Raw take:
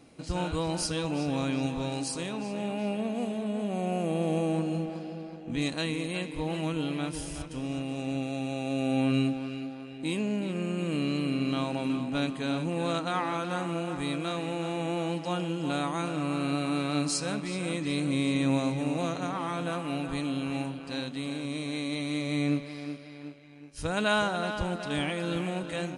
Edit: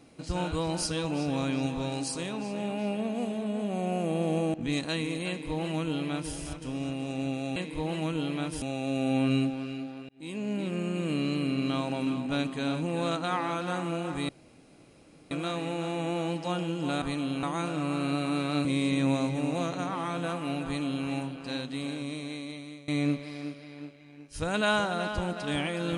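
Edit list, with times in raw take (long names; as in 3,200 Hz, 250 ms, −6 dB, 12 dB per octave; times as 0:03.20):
0:04.54–0:05.43: remove
0:06.17–0:07.23: duplicate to 0:08.45
0:09.92–0:10.42: fade in
0:14.12: splice in room tone 1.02 s
0:17.05–0:18.08: remove
0:20.08–0:20.49: duplicate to 0:15.83
0:21.33–0:22.31: fade out, to −21.5 dB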